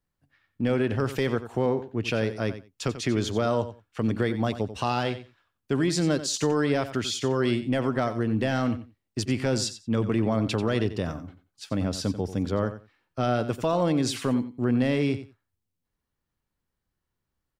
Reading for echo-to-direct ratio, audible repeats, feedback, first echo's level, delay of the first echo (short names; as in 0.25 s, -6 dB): -12.5 dB, 2, 16%, -12.5 dB, 90 ms